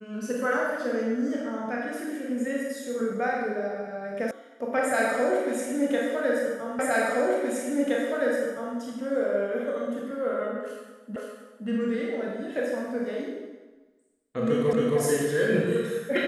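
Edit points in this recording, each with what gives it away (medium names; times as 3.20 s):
4.31 s: sound stops dead
6.79 s: repeat of the last 1.97 s
11.16 s: repeat of the last 0.52 s
14.73 s: repeat of the last 0.27 s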